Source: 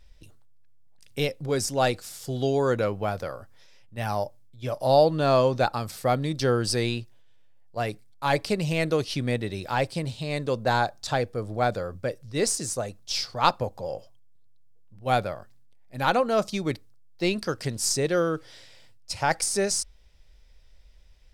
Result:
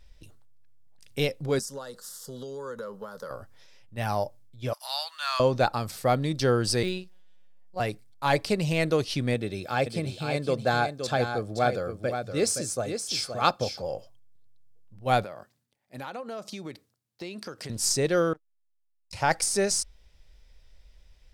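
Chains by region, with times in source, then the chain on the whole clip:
1.59–3.31 low shelf 360 Hz -7 dB + compressor 16:1, threshold -30 dBFS + fixed phaser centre 480 Hz, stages 8
4.73–5.4 inverse Chebyshev high-pass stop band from 430 Hz, stop band 50 dB + tilt +1.5 dB/oct
6.83–7.8 de-esser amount 80% + doubler 40 ms -9 dB + robotiser 184 Hz
9.34–13.82 notch comb 950 Hz + echo 0.52 s -7.5 dB
15.24–17.7 HPF 160 Hz + compressor 5:1, threshold -35 dBFS
18.33–19.13 compressor 5:1, threshold -42 dBFS + core saturation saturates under 960 Hz
whole clip: dry

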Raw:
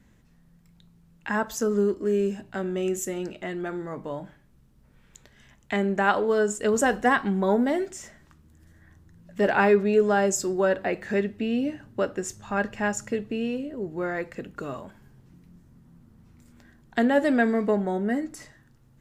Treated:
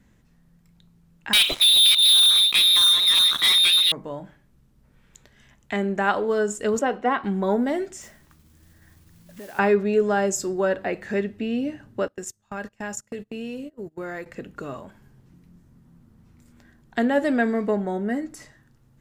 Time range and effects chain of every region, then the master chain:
1.33–3.92 reverse delay 0.31 s, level -8 dB + inverted band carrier 4000 Hz + sample leveller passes 5
6.79–7.24 three-band isolator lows -15 dB, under 210 Hz, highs -20 dB, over 3700 Hz + notch 1700 Hz, Q 6.2
8.01–9.59 modulation noise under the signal 10 dB + compressor, threshold -38 dBFS
12.08–14.26 gate -34 dBFS, range -26 dB + high shelf 5200 Hz +11 dB + compressor 2.5:1, threshold -31 dBFS
whole clip: dry

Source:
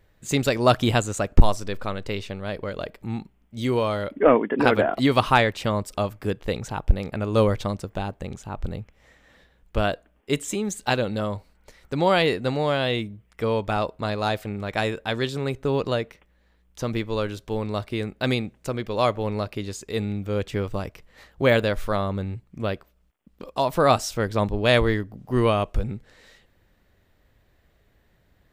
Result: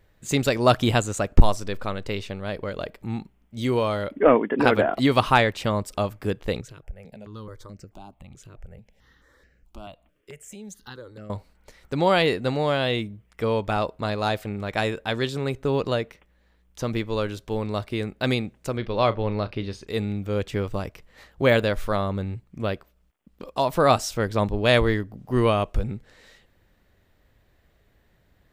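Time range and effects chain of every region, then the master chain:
6.61–11.3 compressor 2:1, threshold -45 dBFS + step phaser 4.6 Hz 220–3500 Hz
18.77–19.87 polynomial smoothing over 15 samples + low shelf 65 Hz +8.5 dB + doubler 35 ms -14 dB
whole clip: dry

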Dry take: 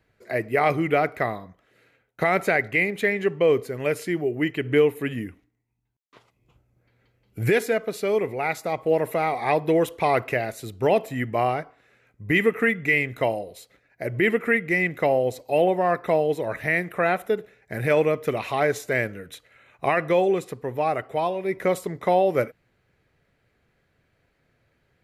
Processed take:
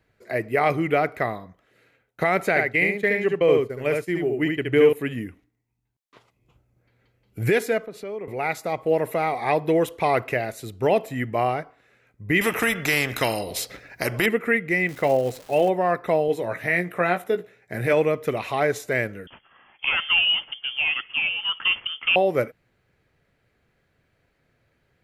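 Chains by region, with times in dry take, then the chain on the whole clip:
2.49–4.93 expander -28 dBFS + echo 71 ms -3.5 dB
7.86–8.28 high shelf 3400 Hz -10 dB + compressor 2.5:1, threshold -34 dBFS + three-band expander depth 40%
12.41–14.26 bell 5200 Hz +7 dB 0.34 oct + spectral compressor 2:1
14.87–15.68 doubler 15 ms -12 dB + crackle 520/s -32 dBFS + mismatched tape noise reduction decoder only
16.28–17.93 HPF 100 Hz + doubler 17 ms -8 dB
19.27–22.16 CVSD 32 kbps + inverted band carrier 3300 Hz
whole clip: dry

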